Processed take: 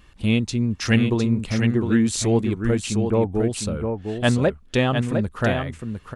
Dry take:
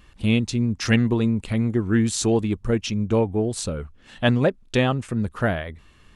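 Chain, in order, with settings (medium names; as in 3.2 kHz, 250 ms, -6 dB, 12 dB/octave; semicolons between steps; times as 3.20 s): 2.77–3.31 s: low-pass 3.8 kHz -> 1.6 kHz 24 dB/octave; on a send: delay 706 ms -6 dB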